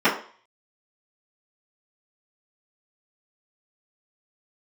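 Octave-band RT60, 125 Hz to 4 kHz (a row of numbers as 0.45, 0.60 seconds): 0.25, 0.40, 0.45, 0.50, 0.45, 0.45 seconds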